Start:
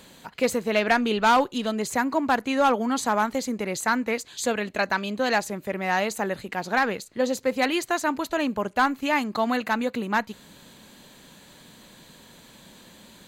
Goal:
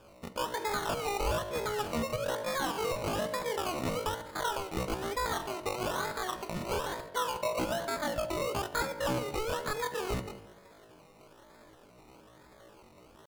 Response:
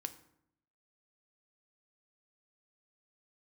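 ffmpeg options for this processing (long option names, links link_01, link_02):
-filter_complex "[0:a]agate=range=-6dB:threshold=-42dB:ratio=16:detection=peak,acrossover=split=7800[link_01][link_02];[link_02]acompressor=threshold=-58dB:ratio=4:attack=1:release=60[link_03];[link_01][link_03]amix=inputs=2:normalize=0,highshelf=frequency=5400:gain=5.5,asplit=2[link_04][link_05];[link_05]acompressor=threshold=-30dB:ratio=8,volume=1dB[link_06];[link_04][link_06]amix=inputs=2:normalize=0,acrusher=samples=41:mix=1:aa=0.000001:lfo=1:lforange=24.6:lforate=1.1[link_07];[1:a]atrim=start_sample=2205[link_08];[link_07][link_08]afir=irnorm=-1:irlink=0,asetrate=85689,aresample=44100,atempo=0.514651,alimiter=limit=-16.5dB:level=0:latency=1:release=200,volume=-6dB"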